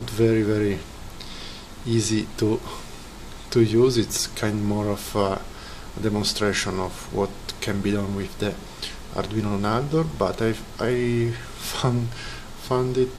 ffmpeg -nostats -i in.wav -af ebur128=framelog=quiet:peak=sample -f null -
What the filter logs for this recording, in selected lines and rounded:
Integrated loudness:
  I:         -24.5 LUFS
  Threshold: -35.1 LUFS
Loudness range:
  LRA:         3.5 LU
  Threshold: -45.2 LUFS
  LRA low:   -26.9 LUFS
  LRA high:  -23.5 LUFS
Sample peak:
  Peak:       -5.8 dBFS